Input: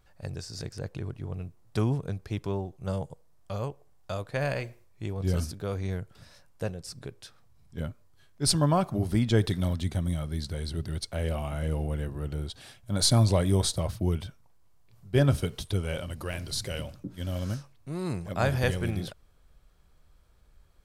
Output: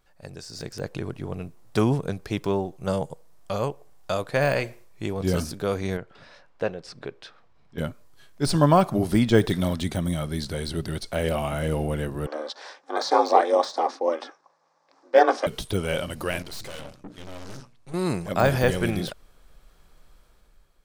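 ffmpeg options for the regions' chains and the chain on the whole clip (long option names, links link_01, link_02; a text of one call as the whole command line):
ffmpeg -i in.wav -filter_complex "[0:a]asettb=1/sr,asplit=3[link_01][link_02][link_03];[link_01]atrim=end=5.974[link_04];[link_02]atrim=start=5.97:end=7.78,asetpts=PTS-STARTPTS,afade=type=in:duration=0.004:curve=qsin,afade=type=out:start_time=1.806:duration=0.004:curve=qsin,lowpass=5200,bass=frequency=250:gain=-7,treble=frequency=4000:gain=-9[link_05];[link_03]atrim=start=7.776[link_06];[link_04][link_05]acrossfade=duration=0.004:curve1=hsin:curve2=qsin[link_07];[link_07][link_06]acrossfade=duration=0.004:curve1=qsin:curve2=hsin,asettb=1/sr,asplit=3[link_08][link_09][link_10];[link_08]atrim=end=12.264[link_11];[link_09]atrim=start=12.26:end=15.47,asetpts=PTS-STARTPTS,afade=type=in:duration=0.004:curve=qsin,afade=type=out:start_time=3.206:duration=0.004:curve=qsin,aeval=exprs='val(0)*sin(2*PI*160*n/s)':channel_layout=same,highpass=frequency=400:width=0.5412,highpass=frequency=400:width=1.3066,equalizer=frequency=540:width_type=q:width=4:gain=9,equalizer=frequency=810:width_type=q:width=4:gain=9,equalizer=frequency=1100:width_type=q:width=4:gain=9,equalizer=frequency=1700:width_type=q:width=4:gain=6,equalizer=frequency=3000:width_type=q:width=4:gain=-7,equalizer=frequency=5500:width_type=q:width=4:gain=5,lowpass=frequency=6300:width=0.5412,lowpass=frequency=6300:width=1.3066[link_12];[link_10]atrim=start=15.466[link_13];[link_11][link_12]acrossfade=duration=0.004:curve1=hsin:curve2=qsin[link_14];[link_14][link_13]acrossfade=duration=0.004:curve1=qsin:curve2=hsin,asettb=1/sr,asplit=3[link_15][link_16][link_17];[link_15]atrim=end=16.424[link_18];[link_16]atrim=start=16.42:end=17.94,asetpts=PTS-STARTPTS,afade=type=in:duration=0.004:curve=qsin,afade=type=out:start_time=1.516:duration=0.004:curve=qsin,lowpass=9500,bandreject=frequency=60:width_type=h:width=6,bandreject=frequency=120:width_type=h:width=6,bandreject=frequency=180:width_type=h:width=6,bandreject=frequency=240:width_type=h:width=6,bandreject=frequency=300:width_type=h:width=6,bandreject=frequency=360:width_type=h:width=6,bandreject=frequency=420:width_type=h:width=6,bandreject=frequency=480:width_type=h:width=6,aeval=exprs='(tanh(141*val(0)+0.75)-tanh(0.75))/141':channel_layout=same[link_19];[link_17]atrim=start=17.936[link_20];[link_18][link_19]acrossfade=duration=0.004:curve1=hsin:curve2=qsin[link_21];[link_21][link_20]acrossfade=duration=0.004:curve1=qsin:curve2=hsin,deesser=1,equalizer=frequency=83:width=0.96:gain=-11.5,dynaudnorm=framelen=190:gausssize=7:maxgain=9dB" out.wav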